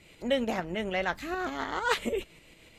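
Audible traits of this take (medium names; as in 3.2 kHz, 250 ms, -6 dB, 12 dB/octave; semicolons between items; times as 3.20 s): tremolo saw up 6.7 Hz, depth 45%; Vorbis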